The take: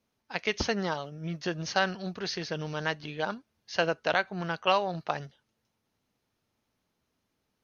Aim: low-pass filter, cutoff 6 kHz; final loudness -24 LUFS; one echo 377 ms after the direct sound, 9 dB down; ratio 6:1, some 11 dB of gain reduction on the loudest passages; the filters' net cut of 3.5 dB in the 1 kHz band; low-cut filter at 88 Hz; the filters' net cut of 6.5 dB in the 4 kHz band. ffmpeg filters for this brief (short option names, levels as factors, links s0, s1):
-af "highpass=88,lowpass=6000,equalizer=f=1000:t=o:g=-4.5,equalizer=f=4000:t=o:g=-8.5,acompressor=threshold=0.0178:ratio=6,aecho=1:1:377:0.355,volume=6.68"